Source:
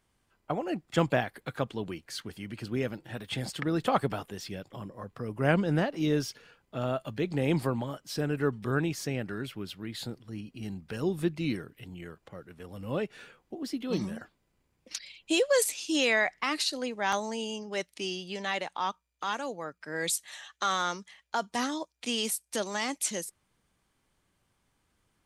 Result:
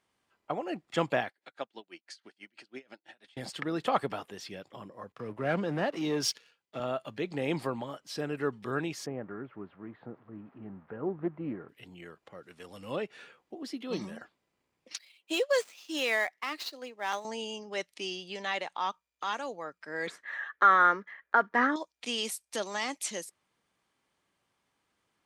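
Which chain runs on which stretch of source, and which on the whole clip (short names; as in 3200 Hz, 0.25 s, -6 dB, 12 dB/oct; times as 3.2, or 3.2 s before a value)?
1.29–3.37 speaker cabinet 360–9400 Hz, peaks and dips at 460 Hz -8 dB, 1100 Hz -7 dB, 4700 Hz +3 dB + dB-linear tremolo 6.1 Hz, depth 30 dB
5.12–6.8 sample leveller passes 2 + compressor 2.5:1, threshold -26 dBFS + three-band expander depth 70%
9.06–11.69 switching spikes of -31.5 dBFS + LPF 1400 Hz 24 dB/oct + Doppler distortion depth 0.15 ms
12.43–12.96 LPF 9900 Hz + high shelf 3300 Hz +11.5 dB
14.97–17.25 switching dead time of 0.054 ms + HPF 220 Hz + upward expander, over -39 dBFS
20.07–21.76 block floating point 5-bit + EQ curve 110 Hz 0 dB, 260 Hz +7 dB, 440 Hz +9 dB, 800 Hz +2 dB, 1700 Hz +15 dB, 2700 Hz -7 dB, 9900 Hz -24 dB
whole clip: HPF 380 Hz 6 dB/oct; high shelf 9000 Hz -11.5 dB; notch 1500 Hz, Q 24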